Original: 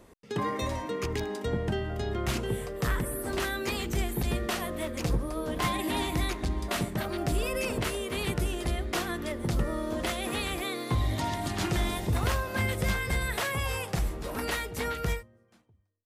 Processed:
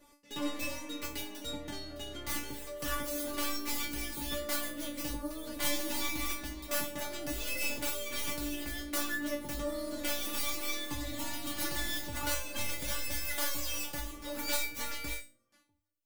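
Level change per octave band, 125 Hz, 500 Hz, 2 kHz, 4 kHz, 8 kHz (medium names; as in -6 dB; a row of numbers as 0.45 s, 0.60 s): -17.5 dB, -8.5 dB, -4.5 dB, -1.0 dB, +2.0 dB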